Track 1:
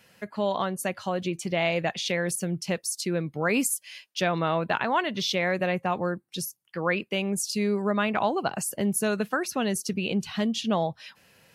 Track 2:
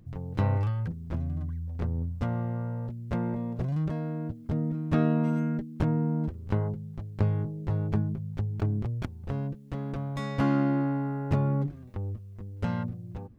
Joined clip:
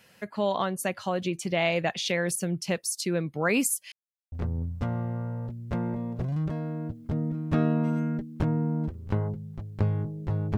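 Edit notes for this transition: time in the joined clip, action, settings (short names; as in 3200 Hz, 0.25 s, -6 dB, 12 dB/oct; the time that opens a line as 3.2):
track 1
3.92–4.32 mute
4.32 switch to track 2 from 1.72 s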